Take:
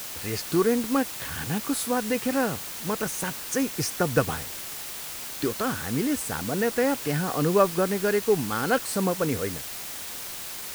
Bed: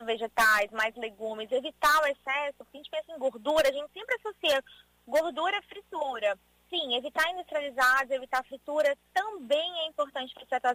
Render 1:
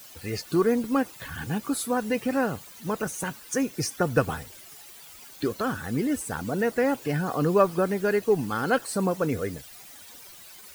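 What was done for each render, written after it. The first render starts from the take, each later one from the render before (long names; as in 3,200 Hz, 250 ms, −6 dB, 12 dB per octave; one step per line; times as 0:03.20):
broadband denoise 14 dB, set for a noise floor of −37 dBFS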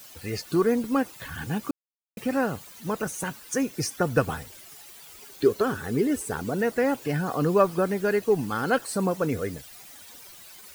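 0:01.71–0:02.17: silence
0:05.08–0:06.51: parametric band 410 Hz +12.5 dB 0.25 octaves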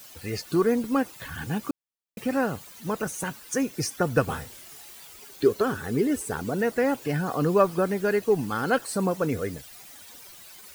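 0:04.25–0:05.07: double-tracking delay 28 ms −5.5 dB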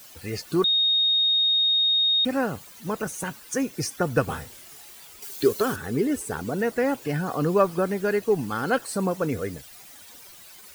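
0:00.64–0:02.25: beep over 3,720 Hz −18 dBFS
0:05.22–0:05.76: high-shelf EQ 3,700 Hz +10 dB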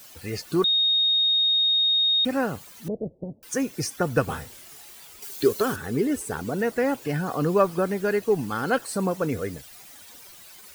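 0:02.88–0:03.43: Butterworth low-pass 640 Hz 48 dB per octave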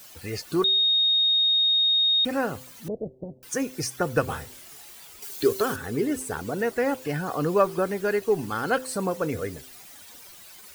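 hum removal 129.1 Hz, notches 4
dynamic equaliser 190 Hz, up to −4 dB, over −40 dBFS, Q 1.3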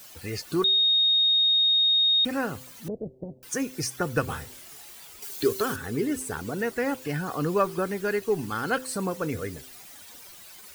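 dynamic equaliser 620 Hz, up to −5 dB, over −38 dBFS, Q 1.2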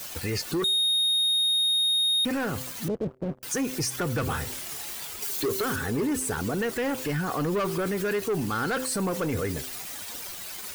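leveller curve on the samples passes 3
brickwall limiter −22 dBFS, peak gain reduction 10.5 dB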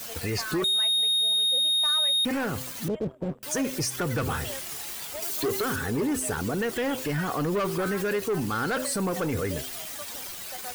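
mix in bed −14.5 dB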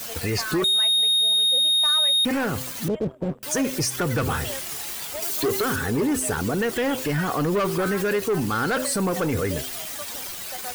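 level +4 dB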